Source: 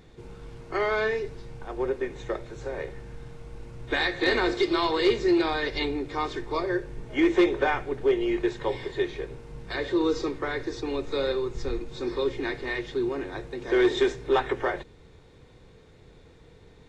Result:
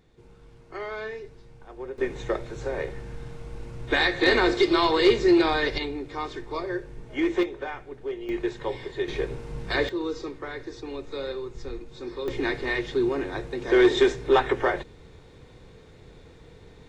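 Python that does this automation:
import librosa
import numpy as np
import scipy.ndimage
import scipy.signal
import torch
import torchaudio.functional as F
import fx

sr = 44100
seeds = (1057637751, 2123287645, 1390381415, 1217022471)

y = fx.gain(x, sr, db=fx.steps((0.0, -8.5), (1.98, 3.5), (5.78, -3.0), (7.43, -9.5), (8.29, -2.0), (9.08, 6.0), (9.89, -5.5), (12.28, 3.5)))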